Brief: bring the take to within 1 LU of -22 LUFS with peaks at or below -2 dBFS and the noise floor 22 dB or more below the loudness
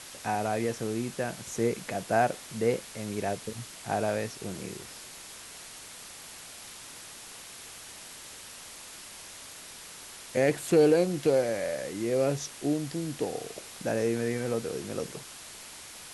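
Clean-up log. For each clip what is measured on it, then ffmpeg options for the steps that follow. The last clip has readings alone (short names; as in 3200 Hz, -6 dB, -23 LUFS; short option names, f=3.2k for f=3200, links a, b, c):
noise floor -46 dBFS; noise floor target -52 dBFS; loudness -30.0 LUFS; peak -11.5 dBFS; loudness target -22.0 LUFS
-> -af "afftdn=nr=6:nf=-46"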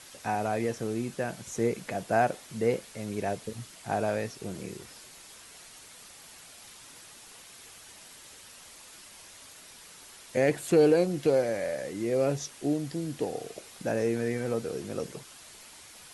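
noise floor -51 dBFS; noise floor target -52 dBFS
-> -af "afftdn=nr=6:nf=-51"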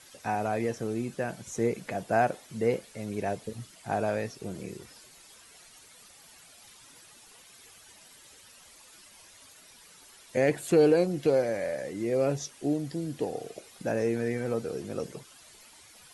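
noise floor -55 dBFS; loudness -30.0 LUFS; peak -12.0 dBFS; loudness target -22.0 LUFS
-> -af "volume=8dB"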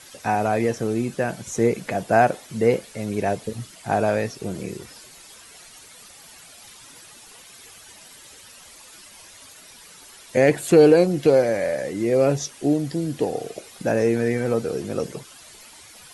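loudness -22.0 LUFS; peak -4.0 dBFS; noise floor -47 dBFS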